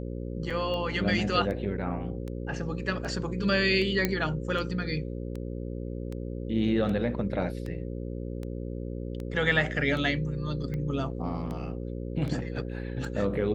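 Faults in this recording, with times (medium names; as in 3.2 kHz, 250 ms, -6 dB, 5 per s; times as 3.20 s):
buzz 60 Hz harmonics 9 -35 dBFS
tick 78 rpm -25 dBFS
0.50 s: dropout 4.7 ms
4.05 s: pop -10 dBFS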